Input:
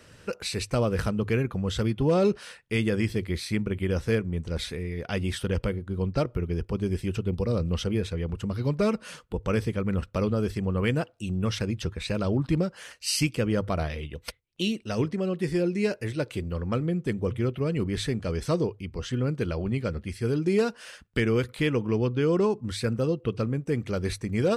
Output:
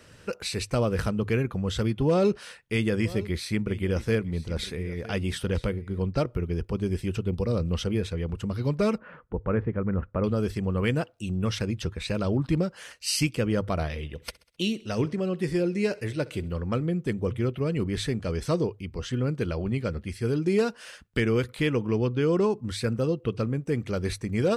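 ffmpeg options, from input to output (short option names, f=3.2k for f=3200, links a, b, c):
-filter_complex "[0:a]asettb=1/sr,asplit=3[a][b][c];[a]atrim=end=2.094[d];[b]atrim=start=2.09:end=6.04,asetpts=PTS-STARTPTS,afade=t=in:d=0.004:c=qsin,afade=t=out:st=3.946:d=0.004:c=qsin,aecho=1:1:962:0.133,atrim=end_sample=174195[e];[c]atrim=start=6.036[f];[d][e]acrossfade=d=0.004:c1=hsin:c2=qsin[g];[g][f]acrossfade=d=0.004:c1=qsin:c2=hsin,asettb=1/sr,asplit=3[h][i][j];[h]atrim=end=8.984[k];[i]atrim=start=8.98:end=10.24,asetpts=PTS-STARTPTS,afade=t=in:d=0.004:c=qsin,afade=t=out:st=1.256:d=0.004:c=qsin,lowpass=f=1.8k:w=0.5412,lowpass=f=1.8k:w=1.3066[l];[j]atrim=start=10.236[m];[k][l]acrossfade=d=0.004:c1=hsin:c2=qsin[n];[n][m]acrossfade=d=0.004:c1=qsin:c2=hsin,asettb=1/sr,asplit=3[o][p][q];[o]atrim=end=13.864[r];[p]atrim=start=13.86:end=16.59,asetpts=PTS-STARTPTS,afade=t=in:d=0.004:c=qsin,afade=t=out:st=2.726:d=0.004:c=qsin,aecho=1:1:65|130|195|260:0.0794|0.0461|0.0267|0.0155,atrim=end_sample=120393[s];[q]atrim=start=16.586[t];[r][s]acrossfade=d=0.004:c1=hsin:c2=qsin[u];[u][t]acrossfade=d=0.004:c1=qsin:c2=hsin"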